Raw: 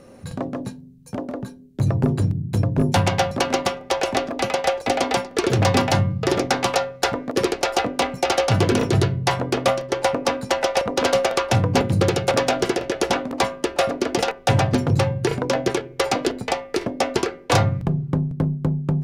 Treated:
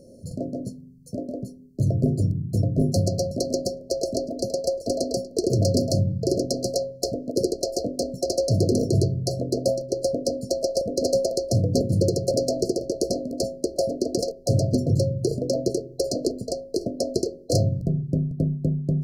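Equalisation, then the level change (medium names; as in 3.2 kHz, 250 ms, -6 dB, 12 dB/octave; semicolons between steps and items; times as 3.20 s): brick-wall FIR band-stop 700–4100 Hz; -2.0 dB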